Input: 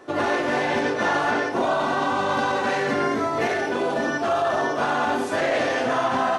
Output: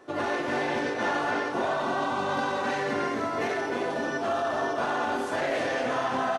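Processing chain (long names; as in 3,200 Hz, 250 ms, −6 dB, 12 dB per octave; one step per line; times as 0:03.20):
single-tap delay 312 ms −7.5 dB
level −6 dB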